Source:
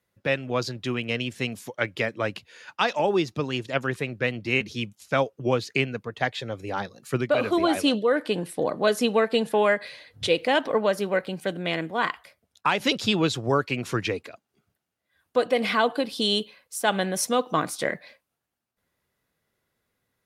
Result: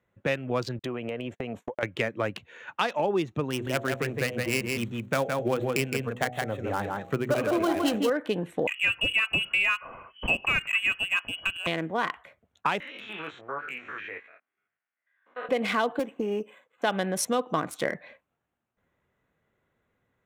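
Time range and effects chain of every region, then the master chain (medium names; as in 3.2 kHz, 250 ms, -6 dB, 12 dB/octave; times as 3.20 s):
0.79–1.83 s: gate -42 dBFS, range -46 dB + peaking EQ 640 Hz +12 dB 2 oct + compression 8:1, threshold -32 dBFS
3.50–8.10 s: dead-time distortion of 0.097 ms + de-hum 61.9 Hz, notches 13 + delay 165 ms -4.5 dB
8.67–11.67 s: hum notches 60/120/180/240/300 Hz + frequency inversion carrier 3.1 kHz
12.80–15.49 s: spectrogram pixelated in time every 100 ms + band-pass filter 1.9 kHz, Q 2.1 + doubling 20 ms -7 dB
15.99–16.82 s: high-pass 260 Hz + careless resampling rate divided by 8×, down filtered, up hold + loudspeaker Doppler distortion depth 0.13 ms
whole clip: local Wiener filter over 9 samples; compression 2:1, threshold -32 dBFS; trim +4 dB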